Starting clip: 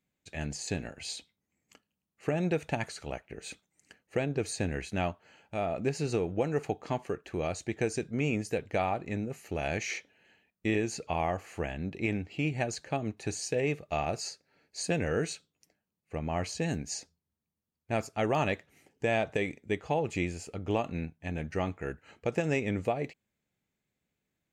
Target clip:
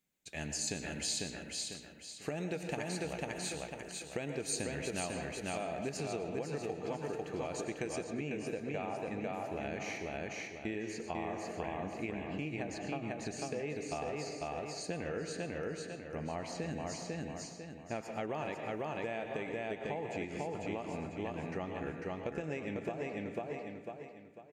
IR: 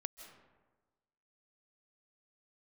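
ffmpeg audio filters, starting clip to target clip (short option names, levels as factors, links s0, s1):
-filter_complex "[0:a]equalizer=f=94:w=1.5:g=-7.5,aecho=1:1:497|994|1491|1988|2485:0.708|0.248|0.0867|0.0304|0.0106[s0];[1:a]atrim=start_sample=2205,asetrate=66150,aresample=44100[s1];[s0][s1]afir=irnorm=-1:irlink=0,acompressor=threshold=0.0126:ratio=6,asetnsamples=n=441:p=0,asendcmd='5.97 highshelf g 3;8.04 highshelf g -6.5',highshelf=f=4300:g=9,volume=1.5"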